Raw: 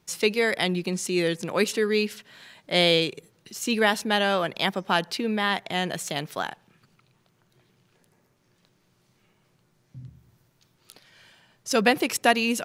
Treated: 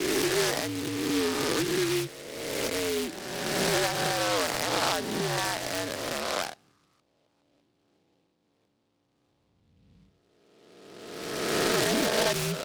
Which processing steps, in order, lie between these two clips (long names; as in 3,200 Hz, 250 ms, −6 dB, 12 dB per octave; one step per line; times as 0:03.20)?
peak hold with a rise ahead of every peak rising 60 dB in 1.91 s
low-pass that shuts in the quiet parts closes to 940 Hz, open at −19 dBFS
brickwall limiter −10 dBFS, peak gain reduction 8.5 dB
single-sideband voice off tune −73 Hz 240–2,700 Hz
short delay modulated by noise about 3,000 Hz, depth 0.11 ms
level −4.5 dB